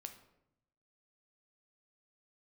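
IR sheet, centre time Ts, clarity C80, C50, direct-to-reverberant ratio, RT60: 12 ms, 13.5 dB, 10.5 dB, 6.0 dB, 0.80 s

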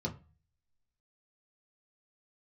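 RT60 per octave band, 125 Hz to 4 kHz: 0.60, 0.40, 0.30, 0.35, 0.30, 0.25 seconds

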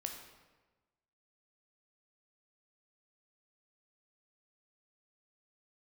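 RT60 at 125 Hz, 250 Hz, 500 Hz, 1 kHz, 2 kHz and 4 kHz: 1.4, 1.3, 1.3, 1.2, 1.1, 0.90 seconds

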